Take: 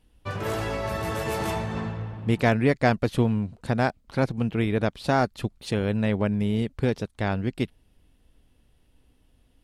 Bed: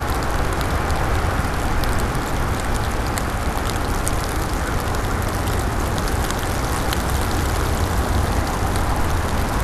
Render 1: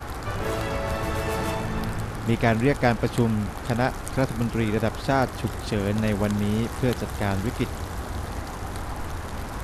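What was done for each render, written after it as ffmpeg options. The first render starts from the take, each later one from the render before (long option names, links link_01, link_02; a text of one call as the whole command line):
ffmpeg -i in.wav -i bed.wav -filter_complex "[1:a]volume=-12dB[link_01];[0:a][link_01]amix=inputs=2:normalize=0" out.wav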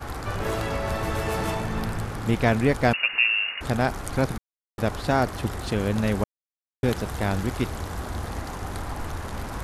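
ffmpeg -i in.wav -filter_complex "[0:a]asettb=1/sr,asplit=3[link_01][link_02][link_03];[link_01]atrim=end=2.934[link_04];[link_02]atrim=start=2.93:end=3.61,asetpts=PTS-STARTPTS,afade=type=in:duration=0.004:curve=qsin,afade=type=out:start_time=0.676:duration=0.004:curve=qsin,lowpass=frequency=2500:width_type=q:width=0.5098,lowpass=frequency=2500:width_type=q:width=0.6013,lowpass=frequency=2500:width_type=q:width=0.9,lowpass=frequency=2500:width_type=q:width=2.563,afreqshift=-2900[link_05];[link_03]atrim=start=3.606[link_06];[link_04][link_05]acrossfade=duration=0.004:curve1=hsin:curve2=qsin[link_07];[link_07][link_06]acrossfade=duration=0.004:curve1=qsin:curve2=hsin,asplit=5[link_08][link_09][link_10][link_11][link_12];[link_08]atrim=end=4.38,asetpts=PTS-STARTPTS,afade=type=out:start_time=4.376:duration=0.004:curve=hsin[link_13];[link_09]atrim=start=4.38:end=4.78,asetpts=PTS-STARTPTS,volume=0[link_14];[link_10]atrim=start=4.78:end=6.24,asetpts=PTS-STARTPTS,afade=type=in:duration=0.004:curve=hsin,afade=type=out:start_time=1.456:duration=0.004:curve=hsin[link_15];[link_11]atrim=start=6.24:end=6.83,asetpts=PTS-STARTPTS,volume=0[link_16];[link_12]atrim=start=6.83,asetpts=PTS-STARTPTS,afade=type=in:duration=0.004:curve=hsin[link_17];[link_13][link_14][link_15][link_16][link_17]concat=n=5:v=0:a=1" out.wav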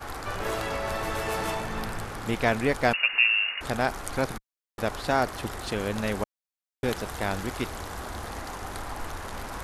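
ffmpeg -i in.wav -af "equalizer=frequency=100:width=0.36:gain=-9" out.wav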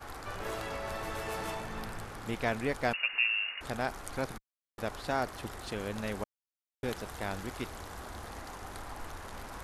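ffmpeg -i in.wav -af "volume=-7.5dB" out.wav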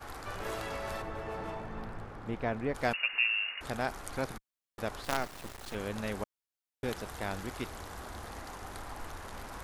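ffmpeg -i in.wav -filter_complex "[0:a]asplit=3[link_01][link_02][link_03];[link_01]afade=type=out:start_time=1.01:duration=0.02[link_04];[link_02]lowpass=frequency=1100:poles=1,afade=type=in:start_time=1.01:duration=0.02,afade=type=out:start_time=2.74:duration=0.02[link_05];[link_03]afade=type=in:start_time=2.74:duration=0.02[link_06];[link_04][link_05][link_06]amix=inputs=3:normalize=0,asettb=1/sr,asplit=3[link_07][link_08][link_09];[link_07]atrim=end=5.044[link_10];[link_08]atrim=start=5.04:end=5.75,asetpts=PTS-STARTPTS,afade=type=in:duration=0.004:curve=qsin,afade=type=out:start_time=0.706:duration=0.004:curve=qsin,acrusher=bits=5:dc=4:mix=0:aa=0.000001[link_11];[link_09]atrim=start=5.746[link_12];[link_10][link_11]acrossfade=duration=0.004:curve1=hsin:curve2=qsin[link_13];[link_13][link_12]acrossfade=duration=0.004:curve1=qsin:curve2=hsin" out.wav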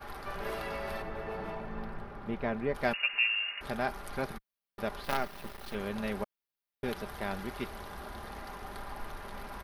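ffmpeg -i in.wav -af "equalizer=frequency=7300:width_type=o:width=0.57:gain=-14,aecho=1:1:5:0.47" out.wav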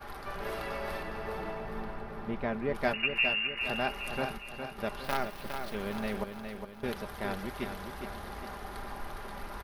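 ffmpeg -i in.wav -af "aecho=1:1:410|820|1230|1640|2050|2460:0.447|0.219|0.107|0.0526|0.0258|0.0126" out.wav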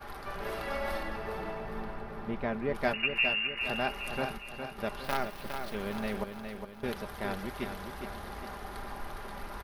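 ffmpeg -i in.wav -filter_complex "[0:a]asettb=1/sr,asplit=3[link_01][link_02][link_03];[link_01]atrim=end=0.674[link_04];[link_02]atrim=start=0.67:end=1.16,asetpts=PTS-STARTPTS,afade=type=in:duration=0.004:curve=qsin,afade=type=out:start_time=0.486:duration=0.004:curve=qsin,aecho=1:1:3.6:0.71,atrim=end_sample=21609[link_05];[link_03]atrim=start=1.156[link_06];[link_04][link_05]acrossfade=duration=0.004:curve1=hsin:curve2=qsin[link_07];[link_07][link_06]acrossfade=duration=0.004:curve1=qsin:curve2=hsin" out.wav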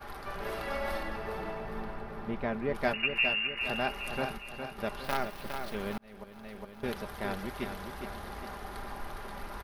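ffmpeg -i in.wav -filter_complex "[0:a]asplit=2[link_01][link_02];[link_01]atrim=end=5.98,asetpts=PTS-STARTPTS,afade=type=out:start_time=5.976:duration=0.004:curve=hsin[link_03];[link_02]atrim=start=5.98,asetpts=PTS-STARTPTS,afade=type=in:duration=0.85[link_04];[link_03][link_04]concat=n=2:v=0:a=1" out.wav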